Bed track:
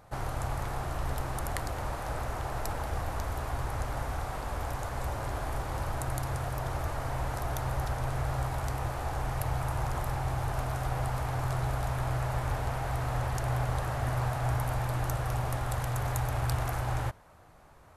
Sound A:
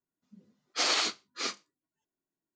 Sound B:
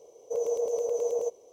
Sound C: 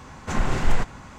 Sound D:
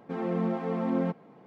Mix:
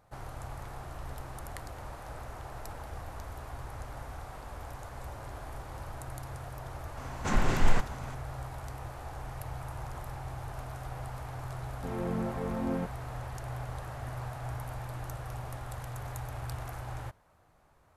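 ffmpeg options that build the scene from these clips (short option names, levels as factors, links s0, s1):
-filter_complex "[0:a]volume=0.376[s0];[3:a]atrim=end=1.18,asetpts=PTS-STARTPTS,volume=0.708,afade=t=in:d=0.004:c=hsin,afade=t=out:st=1.176:d=0.004:c=hsin,adelay=6970[s1];[4:a]atrim=end=1.46,asetpts=PTS-STARTPTS,volume=0.562,afade=t=in:d=0.004:c=hsin,afade=t=out:st=1.456:d=0.004:c=hsin,adelay=11740[s2];[s0][s1][s2]amix=inputs=3:normalize=0"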